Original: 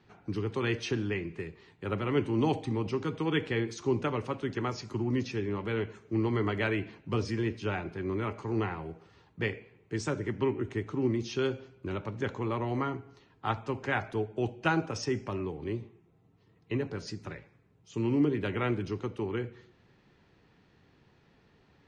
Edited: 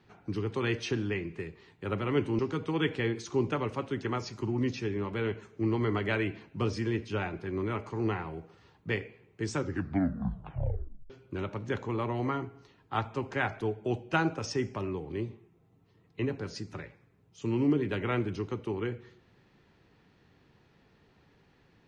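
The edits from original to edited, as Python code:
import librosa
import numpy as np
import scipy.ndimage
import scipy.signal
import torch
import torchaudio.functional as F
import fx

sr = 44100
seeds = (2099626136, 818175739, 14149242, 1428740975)

y = fx.edit(x, sr, fx.cut(start_s=2.39, length_s=0.52),
    fx.tape_stop(start_s=10.07, length_s=1.55), tone=tone)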